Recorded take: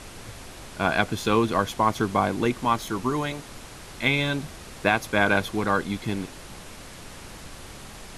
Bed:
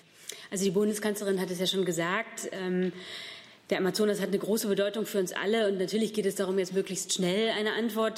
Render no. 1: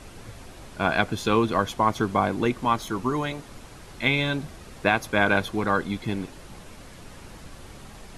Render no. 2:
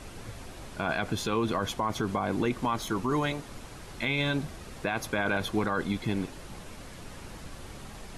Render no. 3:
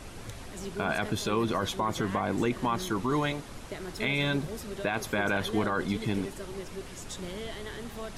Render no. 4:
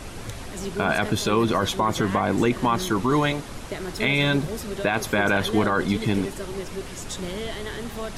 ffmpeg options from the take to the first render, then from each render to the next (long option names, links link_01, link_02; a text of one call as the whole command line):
ffmpeg -i in.wav -af "afftdn=noise_reduction=6:noise_floor=-43" out.wav
ffmpeg -i in.wav -af "alimiter=limit=-18.5dB:level=0:latency=1:release=40" out.wav
ffmpeg -i in.wav -i bed.wav -filter_complex "[1:a]volume=-12dB[link_01];[0:a][link_01]amix=inputs=2:normalize=0" out.wav
ffmpeg -i in.wav -af "volume=7dB" out.wav